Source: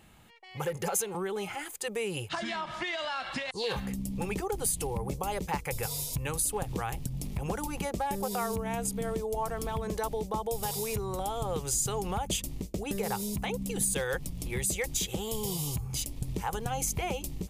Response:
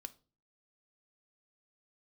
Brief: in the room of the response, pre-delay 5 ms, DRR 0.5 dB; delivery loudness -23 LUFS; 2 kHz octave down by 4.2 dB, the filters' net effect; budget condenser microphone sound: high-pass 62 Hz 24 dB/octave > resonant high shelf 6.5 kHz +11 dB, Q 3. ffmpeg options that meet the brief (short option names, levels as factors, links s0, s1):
-filter_complex "[0:a]equalizer=f=2000:t=o:g=-4,asplit=2[s0][s1];[1:a]atrim=start_sample=2205,adelay=5[s2];[s1][s2]afir=irnorm=-1:irlink=0,volume=1.68[s3];[s0][s3]amix=inputs=2:normalize=0,highpass=f=62:w=0.5412,highpass=f=62:w=1.3066,highshelf=f=6500:t=q:w=3:g=11,volume=0.631"